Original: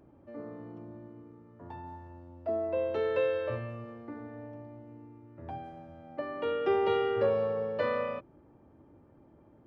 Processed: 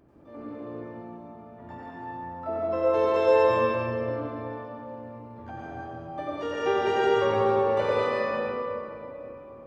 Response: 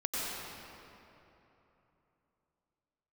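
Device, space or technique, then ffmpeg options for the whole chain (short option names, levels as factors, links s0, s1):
shimmer-style reverb: -filter_complex "[0:a]asettb=1/sr,asplit=3[s0][s1][s2];[s0]atrim=end=4.854[s3];[s1]atrim=start=4.85:end=5.4,asetpts=PTS-STARTPTS,afade=t=in:d=0.004:c=qsin,afade=t=out:st=0.546:d=0.004:c=qsin,aecho=1:1:4.9:0.76,atrim=end_sample=24255[s4];[s2]atrim=start=5.396[s5];[s3][s4]acrossfade=d=0.004:c1=hsin:c2=qsin[s6];[s6][s5]acrossfade=d=0.004:c1=qsin:c2=hsin,asplit=2[s7][s8];[s8]asetrate=88200,aresample=44100,atempo=0.5,volume=0.282[s9];[s7][s9]amix=inputs=2:normalize=0[s10];[1:a]atrim=start_sample=2205[s11];[s10][s11]afir=irnorm=-1:irlink=0"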